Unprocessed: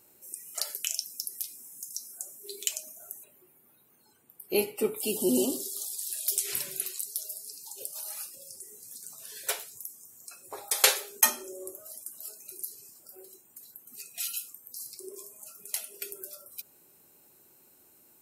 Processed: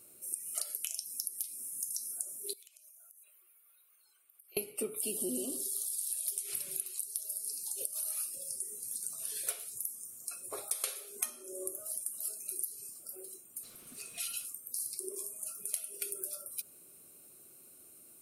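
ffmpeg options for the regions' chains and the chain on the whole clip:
-filter_complex "[0:a]asettb=1/sr,asplit=3[a][b][c];[a]atrim=end=2.534[d];[b]atrim=start=2.53:end=4.57,asetpts=PTS-STARTPTS,afade=t=in:d=0.004:c=qsin,afade=t=out:st=2.036:d=0.004:c=qsin,highpass=1.4k,equalizer=f=8.2k:t=o:w=1.4:g=-9,acompressor=threshold=-57dB:ratio=20:attack=3.2:release=140:knee=1:detection=peak[e];[c]atrim=start=4.566[f];[d][e]acrossfade=d=0.004:c1=hsin:c2=qsin[g];[g][f]acrossfade=d=0.004:c1=qsin:c2=hsin,asettb=1/sr,asplit=3[h][i][j];[h]atrim=end=13.634[k];[i]atrim=start=13.63:end=14.45,asetpts=PTS-STARTPTS,afade=t=in:d=0.004:c=qsin,afade=t=out:st=0.816:d=0.004:c=qsin,aeval=exprs='val(0)+0.5*0.00631*sgn(val(0))':c=same,aemphasis=mode=reproduction:type=50kf[l];[j]atrim=start=14.446[m];[k][l]acrossfade=d=0.004:c1=hsin:c2=qsin[n];[n][m]acrossfade=d=0.004:c1=qsin:c2=hsin,superequalizer=9b=0.355:11b=0.562:16b=2.82,acompressor=threshold=-32dB:ratio=16"

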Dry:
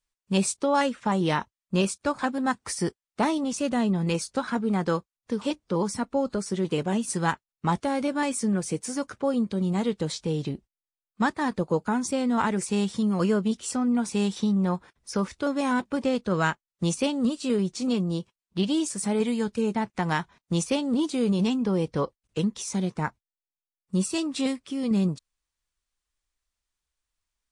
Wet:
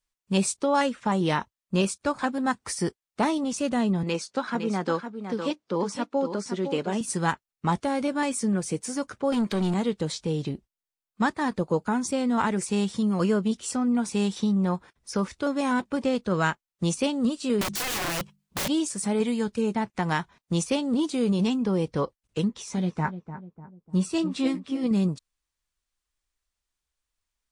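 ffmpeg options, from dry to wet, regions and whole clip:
-filter_complex "[0:a]asettb=1/sr,asplit=3[a][b][c];[a]atrim=end=4.034[d];[b]atrim=start=4.03:end=7.01,asetpts=PTS-STARTPTS,afade=t=in:d=0.004:c=qsin,afade=t=out:st=2.976:d=0.004:c=qsin,highpass=210,lowpass=6.7k,aecho=1:1:509:0.376,atrim=end_sample=131418[e];[c]atrim=start=7.006[f];[d][e]acrossfade=d=0.004:c1=hsin:c2=qsin[g];[g][f]acrossfade=d=0.004:c1=qsin:c2=hsin,asettb=1/sr,asplit=3[h][i][j];[h]atrim=end=9.324[k];[i]atrim=start=9.32:end=9.74,asetpts=PTS-STARTPTS,afade=t=in:d=0.004:c=qsin,afade=t=out:st=0.416:d=0.004:c=qsin,asplit=2[l][m];[m]highpass=f=720:p=1,volume=20dB,asoftclip=type=tanh:threshold=-17dB[n];[l][n]amix=inputs=2:normalize=0,lowpass=f=6.8k:p=1,volume=-6dB,bandreject=f=510:w=7.2[o];[j]atrim=start=9.736[p];[k][o]acrossfade=d=0.004:c1=hsin:c2=qsin[q];[q][p]acrossfade=d=0.004:c1=qsin:c2=hsin,asettb=1/sr,asplit=3[r][s][t];[r]atrim=end=17.614[u];[s]atrim=start=17.61:end=18.68,asetpts=PTS-STARTPTS,afade=t=in:d=0.004:c=qsin,afade=t=out:st=1.066:d=0.004:c=qsin,bandreject=f=50:t=h:w=6,bandreject=f=100:t=h:w=6,bandreject=f=150:t=h:w=6,bandreject=f=200:t=h:w=6,acontrast=83,aeval=exprs='(mod(15.8*val(0)+1,2)-1)/15.8':c=same[v];[t]atrim=start=18.676[w];[u][v]acrossfade=d=0.004:c1=hsin:c2=qsin[x];[x][w]acrossfade=d=0.004:c1=qsin:c2=hsin,asettb=1/sr,asplit=3[y][z][aa];[y]atrim=end=22.484[ab];[z]atrim=start=22.48:end=24.87,asetpts=PTS-STARTPTS,afade=t=in:d=0.004:c=qsin,afade=t=out:st=2.386:d=0.004:c=qsin,highshelf=f=6.3k:g=-12,asplit=2[ac][ad];[ad]adelay=12,volume=-7.5dB[ae];[ac][ae]amix=inputs=2:normalize=0,atrim=end_sample=105399,asplit=2[af][ag];[ag]adelay=298,lowpass=f=920:p=1,volume=-10.5dB,asplit=2[ah][ai];[ai]adelay=298,lowpass=f=920:p=1,volume=0.48,asplit=2[aj][ak];[ak]adelay=298,lowpass=f=920:p=1,volume=0.48,asplit=2[al][am];[am]adelay=298,lowpass=f=920:p=1,volume=0.48,asplit=2[an][ao];[ao]adelay=298,lowpass=f=920:p=1,volume=0.48[ap];[af][ah][aj][al][an][ap]amix=inputs=6:normalize=0,atrim=end_sample=105399[aq];[aa]atrim=start=24.866[ar];[ab][aq]acrossfade=d=0.004:c1=hsin:c2=qsin[as];[as][ar]acrossfade=d=0.004:c1=qsin:c2=hsin"

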